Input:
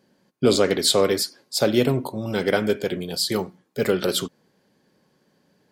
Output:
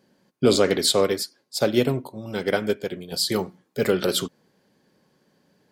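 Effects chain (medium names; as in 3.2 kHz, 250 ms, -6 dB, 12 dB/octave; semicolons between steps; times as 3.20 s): 0.86–3.12 s: upward expansion 1.5:1, over -34 dBFS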